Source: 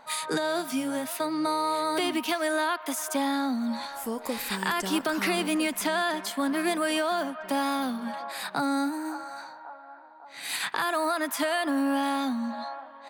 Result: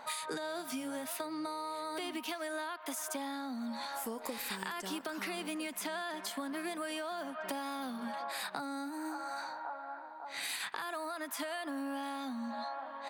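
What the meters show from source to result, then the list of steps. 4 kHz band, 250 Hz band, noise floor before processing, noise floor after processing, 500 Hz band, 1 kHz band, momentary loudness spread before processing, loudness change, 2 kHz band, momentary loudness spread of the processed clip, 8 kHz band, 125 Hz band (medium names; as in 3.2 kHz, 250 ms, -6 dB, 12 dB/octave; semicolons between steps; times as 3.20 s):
-9.5 dB, -12.0 dB, -47 dBFS, -48 dBFS, -11.0 dB, -10.0 dB, 8 LU, -11.0 dB, -10.0 dB, 2 LU, -8.0 dB, under -10 dB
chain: bass shelf 160 Hz -8 dB; compression 12:1, threshold -39 dBFS, peak gain reduction 16 dB; trim +3 dB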